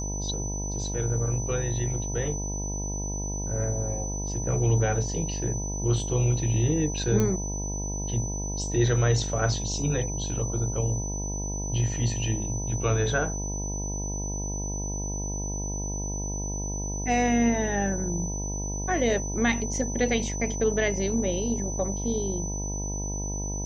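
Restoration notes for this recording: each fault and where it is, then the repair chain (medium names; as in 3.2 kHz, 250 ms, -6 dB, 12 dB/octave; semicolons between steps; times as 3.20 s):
buzz 50 Hz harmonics 20 -32 dBFS
whine 6 kHz -34 dBFS
7.20 s: pop -13 dBFS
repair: de-click; band-stop 6 kHz, Q 30; de-hum 50 Hz, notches 20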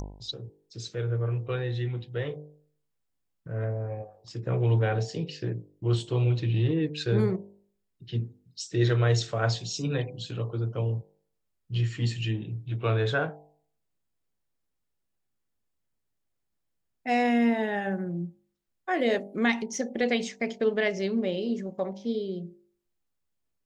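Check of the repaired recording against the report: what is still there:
nothing left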